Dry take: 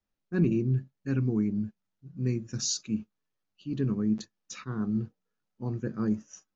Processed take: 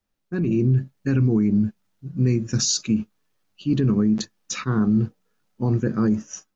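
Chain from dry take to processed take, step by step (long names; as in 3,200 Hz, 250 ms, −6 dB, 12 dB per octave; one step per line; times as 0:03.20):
brickwall limiter −25 dBFS, peak gain reduction 11 dB
automatic gain control gain up to 7 dB
level +6 dB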